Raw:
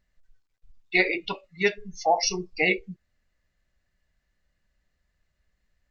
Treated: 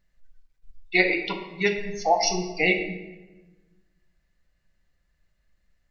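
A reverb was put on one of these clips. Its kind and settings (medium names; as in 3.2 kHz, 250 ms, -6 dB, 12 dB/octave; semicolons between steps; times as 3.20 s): simulated room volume 660 m³, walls mixed, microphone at 0.82 m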